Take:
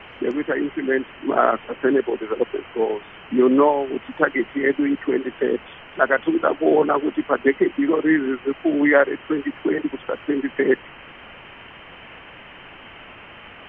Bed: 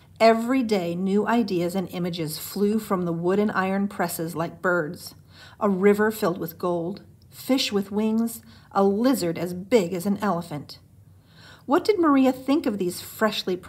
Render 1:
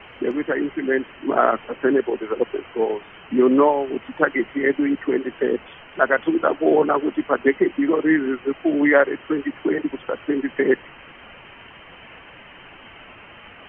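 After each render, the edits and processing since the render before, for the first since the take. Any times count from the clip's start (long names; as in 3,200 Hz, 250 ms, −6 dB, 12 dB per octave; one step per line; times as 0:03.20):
broadband denoise 6 dB, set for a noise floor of −43 dBFS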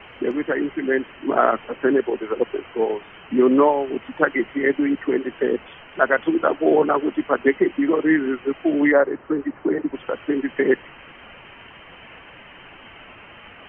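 0:08.91–0:09.93: low-pass filter 1,200 Hz → 1,600 Hz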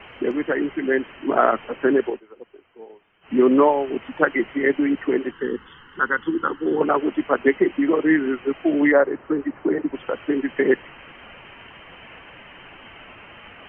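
0:02.07–0:03.35: duck −20.5 dB, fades 0.14 s
0:05.31–0:06.81: phaser with its sweep stopped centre 2,400 Hz, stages 6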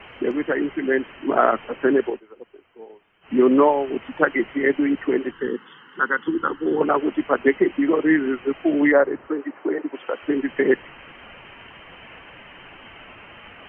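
0:05.48–0:06.28: high-pass filter 160 Hz 24 dB per octave
0:09.28–0:10.23: high-pass filter 330 Hz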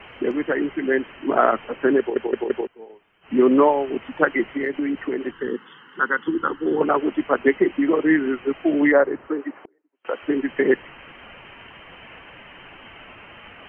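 0:01.99: stutter in place 0.17 s, 4 plays
0:04.52–0:05.51: downward compressor, threshold −20 dBFS
0:09.64–0:10.05: gate with flip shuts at −29 dBFS, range −41 dB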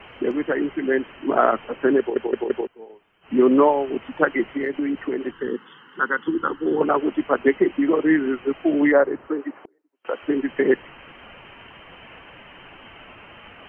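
parametric band 2,000 Hz −2.5 dB 0.77 octaves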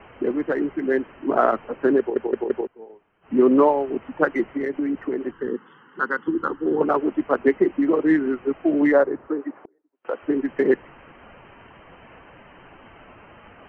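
adaptive Wiener filter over 9 samples
low-pass filter 2,000 Hz 6 dB per octave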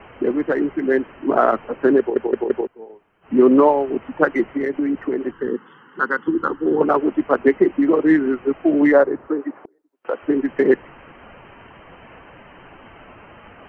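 level +3.5 dB
brickwall limiter −3 dBFS, peak gain reduction 2.5 dB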